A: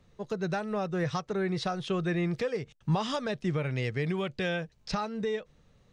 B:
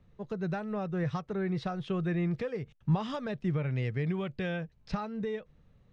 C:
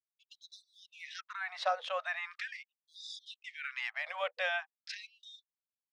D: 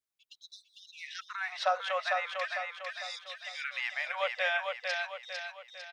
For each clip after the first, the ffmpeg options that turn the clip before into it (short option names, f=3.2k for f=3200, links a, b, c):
-af "bass=f=250:g=6,treble=f=4k:g=-11,volume=-4.5dB"
-af "anlmdn=0.00158,afftfilt=real='re*gte(b*sr/1024,470*pow(3500/470,0.5+0.5*sin(2*PI*0.41*pts/sr)))':imag='im*gte(b*sr/1024,470*pow(3500/470,0.5+0.5*sin(2*PI*0.41*pts/sr)))':win_size=1024:overlap=0.75,volume=7dB"
-af "aecho=1:1:451|902|1353|1804|2255|2706:0.631|0.29|0.134|0.0614|0.0283|0.013,volume=3dB"